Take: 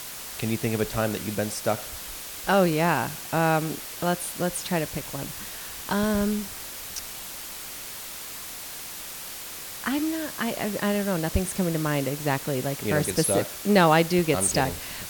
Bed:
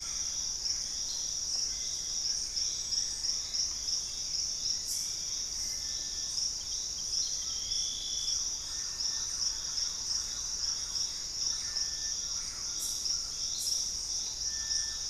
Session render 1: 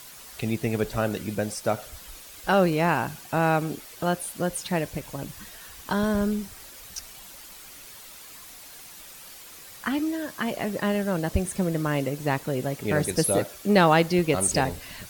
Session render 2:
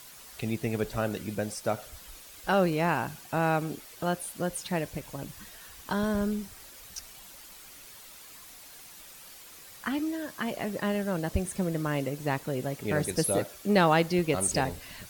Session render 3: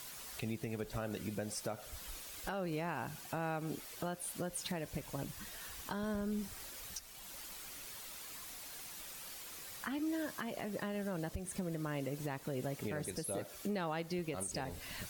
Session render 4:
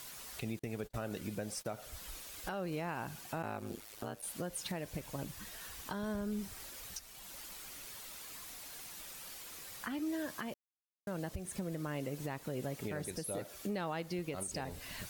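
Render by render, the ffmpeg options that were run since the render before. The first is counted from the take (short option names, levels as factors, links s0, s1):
-af "afftdn=nr=9:nf=-38"
-af "volume=0.631"
-af "acompressor=threshold=0.0316:ratio=6,alimiter=level_in=1.78:limit=0.0631:level=0:latency=1:release=398,volume=0.562"
-filter_complex "[0:a]asettb=1/sr,asplit=3[s0][s1][s2];[s0]atrim=end=0.594[s3];[s1]atrim=start=0.59:end=1.73,asetpts=PTS-STARTPTS,afade=t=in:d=0.004:c=qsin,afade=t=out:st=1.136:d=0.004:c=qsin,agate=range=0.02:threshold=0.00447:ratio=16:release=100:detection=peak[s4];[s2]atrim=start=1.726[s5];[s3][s4]acrossfade=d=0.004:c1=hsin:c2=qsin[s6];[s6][s5]acrossfade=d=0.004:c1=qsin:c2=hsin,asplit=3[s7][s8][s9];[s7]afade=t=out:st=3.42:d=0.02[s10];[s8]aeval=exprs='val(0)*sin(2*PI*53*n/s)':c=same,afade=t=in:st=3.42:d=0.02,afade=t=out:st=4.21:d=0.02[s11];[s9]afade=t=in:st=4.21:d=0.02[s12];[s10][s11][s12]amix=inputs=3:normalize=0,asplit=3[s13][s14][s15];[s13]atrim=end=10.54,asetpts=PTS-STARTPTS,afade=t=out:st=10.536:d=0.004:c=hsin[s16];[s14]atrim=start=10.54:end=11.07,asetpts=PTS-STARTPTS,volume=0[s17];[s15]atrim=start=11.07,asetpts=PTS-STARTPTS,afade=t=in:d=0.004:c=hsin[s18];[s16][s17][s18]concat=n=3:v=0:a=1"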